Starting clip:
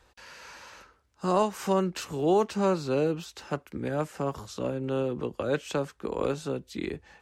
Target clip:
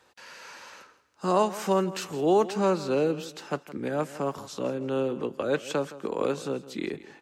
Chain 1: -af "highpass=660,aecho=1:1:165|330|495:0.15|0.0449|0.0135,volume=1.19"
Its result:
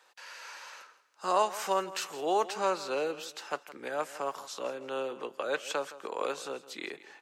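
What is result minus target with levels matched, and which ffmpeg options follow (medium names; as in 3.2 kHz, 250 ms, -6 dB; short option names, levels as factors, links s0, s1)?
125 Hz band -15.5 dB
-af "highpass=170,aecho=1:1:165|330|495:0.15|0.0449|0.0135,volume=1.19"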